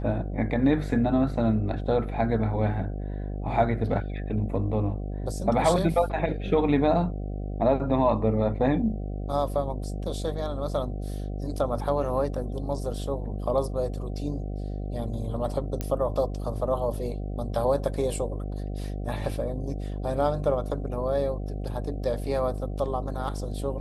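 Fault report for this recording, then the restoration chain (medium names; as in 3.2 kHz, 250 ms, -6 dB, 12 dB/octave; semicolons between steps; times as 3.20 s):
buzz 50 Hz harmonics 15 -32 dBFS
15.81 s: pop -15 dBFS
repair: de-click; de-hum 50 Hz, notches 15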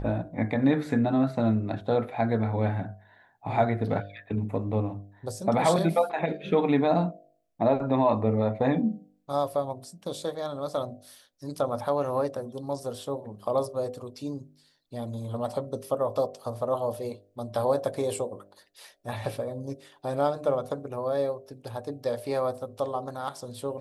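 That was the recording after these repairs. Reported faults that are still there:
15.81 s: pop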